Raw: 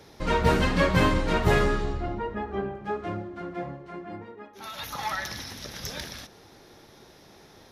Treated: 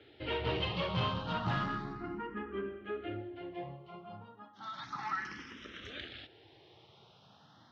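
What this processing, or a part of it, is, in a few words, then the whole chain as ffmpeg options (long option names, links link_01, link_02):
barber-pole phaser into a guitar amplifier: -filter_complex "[0:a]asplit=2[link_01][link_02];[link_02]afreqshift=0.33[link_03];[link_01][link_03]amix=inputs=2:normalize=1,asoftclip=type=tanh:threshold=-22dB,highpass=89,equalizer=frequency=120:width_type=q:width=4:gain=5,equalizer=frequency=320:width_type=q:width=4:gain=4,equalizer=frequency=550:width_type=q:width=4:gain=-4,equalizer=frequency=1300:width_type=q:width=4:gain=5,equalizer=frequency=3000:width_type=q:width=4:gain=9,lowpass=frequency=4400:width=0.5412,lowpass=frequency=4400:width=1.3066,volume=-6dB"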